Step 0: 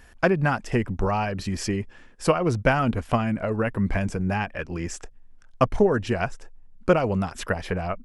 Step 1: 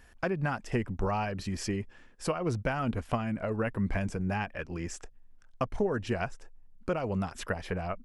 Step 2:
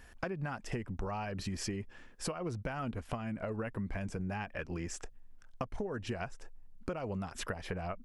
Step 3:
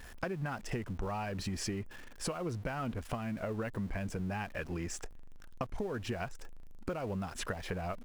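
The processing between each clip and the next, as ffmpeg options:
-af "alimiter=limit=-12.5dB:level=0:latency=1:release=271,volume=-6dB"
-af "acompressor=threshold=-36dB:ratio=6,volume=1.5dB"
-af "aeval=exprs='val(0)+0.5*0.00376*sgn(val(0))':c=same"

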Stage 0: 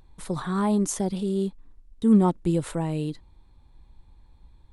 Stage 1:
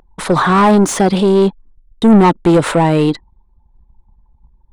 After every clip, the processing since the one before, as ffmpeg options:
-filter_complex "[0:a]asplit=2[a][b];[b]highpass=f=720:p=1,volume=25dB,asoftclip=type=tanh:threshold=-9.5dB[c];[a][c]amix=inputs=2:normalize=0,lowpass=f=1.8k:p=1,volume=-6dB,anlmdn=0.398,volume=8.5dB"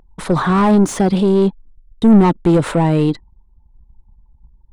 -af "lowshelf=f=300:g=8.5,volume=-6.5dB"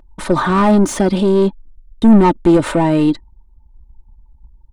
-af "aecho=1:1:3.3:0.46,volume=1dB"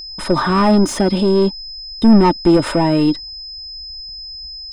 -af "aeval=exprs='val(0)+0.0398*sin(2*PI*5100*n/s)':c=same,volume=-1dB"

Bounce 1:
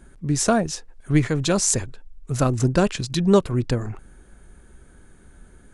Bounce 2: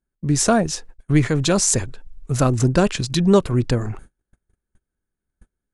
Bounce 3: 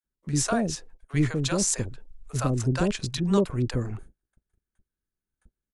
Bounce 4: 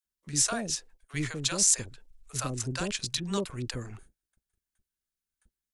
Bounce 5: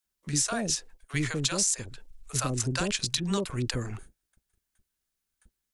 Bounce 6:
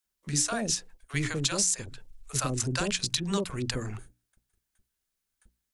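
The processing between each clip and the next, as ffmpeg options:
-filter_complex "[0:a]agate=range=-37dB:threshold=-40dB:ratio=16:detection=peak,asplit=2[a][b];[b]alimiter=limit=-13.5dB:level=0:latency=1:release=28,volume=-3dB[c];[a][c]amix=inputs=2:normalize=0,volume=-1dB"
-filter_complex "[0:a]acrossover=split=640[a][b];[a]adelay=40[c];[c][b]amix=inputs=2:normalize=0,volume=-7dB"
-af "tiltshelf=f=1.5k:g=-7,volume=-3dB"
-af "acompressor=threshold=-31dB:ratio=5,volume=6.5dB"
-af "bandreject=f=60:t=h:w=6,bandreject=f=120:t=h:w=6,bandreject=f=180:t=h:w=6,bandreject=f=240:t=h:w=6,bandreject=f=300:t=h:w=6"

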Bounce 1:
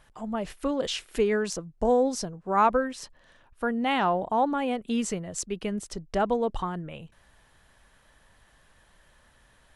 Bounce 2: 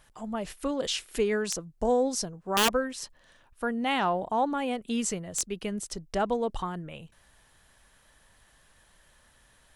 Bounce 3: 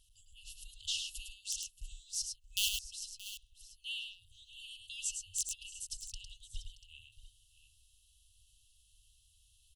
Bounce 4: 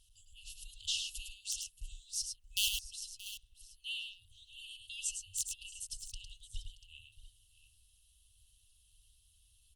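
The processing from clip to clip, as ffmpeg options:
-af "highshelf=f=4.2k:g=8,aeval=exprs='(mod(4.73*val(0)+1,2)-1)/4.73':c=same,volume=-2.5dB"
-af "afftfilt=real='re*(1-between(b*sr/4096,110,2600))':imag='im*(1-between(b*sr/4096,110,2600))':win_size=4096:overlap=0.75,equalizer=f=270:t=o:w=0.72:g=-14.5,aecho=1:1:105|626|689:0.531|0.141|0.178,volume=-5dB"
-af "volume=1dB" -ar 48000 -c:a libopus -b:a 48k

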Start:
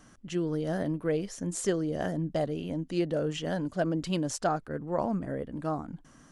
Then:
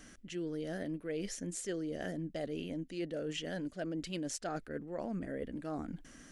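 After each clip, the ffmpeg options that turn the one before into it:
-af "equalizer=f=125:t=o:w=1:g=-10,equalizer=f=1k:t=o:w=1:g=-12,equalizer=f=2k:t=o:w=1:g=5,areverse,acompressor=threshold=-40dB:ratio=5,areverse,volume=3.5dB"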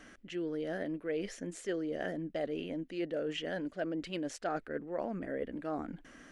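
-af "bass=f=250:g=-9,treble=f=4k:g=-13,volume=4.5dB"

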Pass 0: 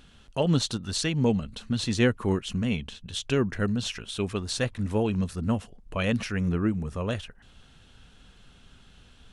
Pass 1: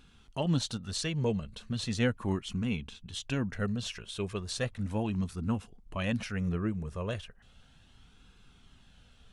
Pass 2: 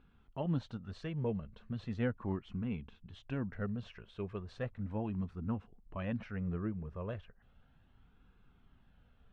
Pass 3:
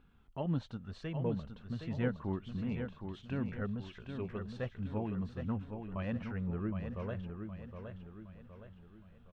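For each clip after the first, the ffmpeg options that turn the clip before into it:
-af "flanger=delay=0.8:depth=1.1:regen=-54:speed=0.36:shape=sinusoidal,volume=-1.5dB"
-af "lowpass=1.7k,volume=-5.5dB"
-af "aecho=1:1:766|1532|2298|3064|3830:0.447|0.197|0.0865|0.0381|0.0167"

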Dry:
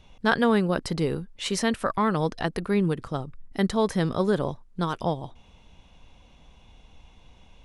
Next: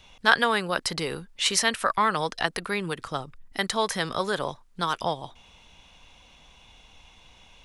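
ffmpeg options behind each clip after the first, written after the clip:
-filter_complex "[0:a]tiltshelf=f=740:g=-6.5,acrossover=split=490|1300[a][b][c];[a]alimiter=level_in=4.5dB:limit=-24dB:level=0:latency=1:release=271,volume=-4.5dB[d];[d][b][c]amix=inputs=3:normalize=0,volume=1.5dB"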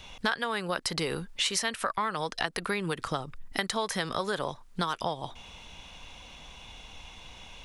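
-af "acompressor=threshold=-33dB:ratio=6,volume=6dB"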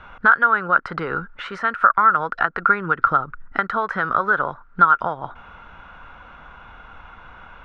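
-af "lowpass=f=1.4k:t=q:w=12,volume=3.5dB"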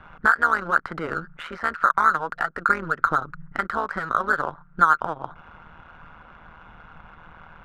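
-af "adynamicsmooth=sensitivity=7:basefreq=3.6k,tremolo=f=160:d=0.824"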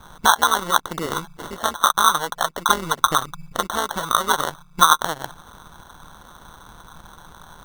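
-af "acrusher=samples=18:mix=1:aa=0.000001,volume=2.5dB"

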